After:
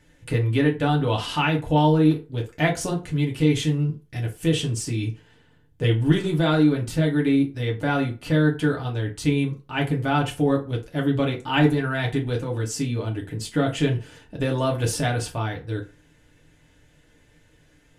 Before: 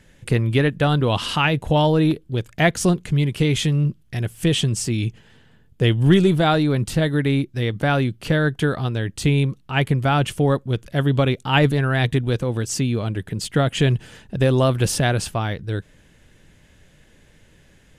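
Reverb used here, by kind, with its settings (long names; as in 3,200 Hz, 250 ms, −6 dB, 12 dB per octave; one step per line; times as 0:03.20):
feedback delay network reverb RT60 0.33 s, low-frequency decay 0.8×, high-frequency decay 0.65×, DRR −1.5 dB
level −7.5 dB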